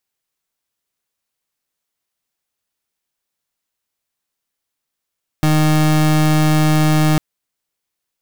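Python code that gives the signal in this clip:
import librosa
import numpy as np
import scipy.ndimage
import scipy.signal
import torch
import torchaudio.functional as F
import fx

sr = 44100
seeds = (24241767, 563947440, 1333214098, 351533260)

y = fx.pulse(sr, length_s=1.75, hz=154.0, level_db=-13.0, duty_pct=31)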